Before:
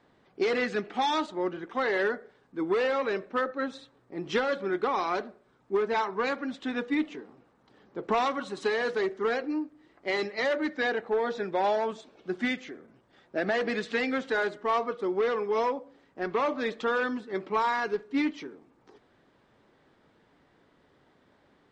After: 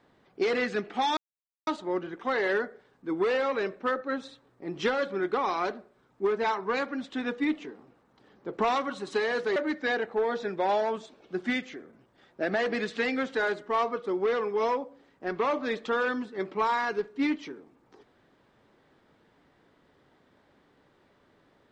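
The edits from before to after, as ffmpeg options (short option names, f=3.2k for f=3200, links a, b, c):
-filter_complex "[0:a]asplit=3[a][b][c];[a]atrim=end=1.17,asetpts=PTS-STARTPTS,afade=t=out:st=1.166:d=0.004:c=hsin,apad=pad_dur=0.5[d];[b]atrim=start=1.17:end=9.062,asetpts=PTS-STARTPTS,afade=t=in:d=0.004:c=hsin[e];[c]atrim=start=10.508[f];[d][e]concat=n=2:v=0:a=1[g];[g][f]acrossfade=d=0.004:c1=hsin:c2=hsin"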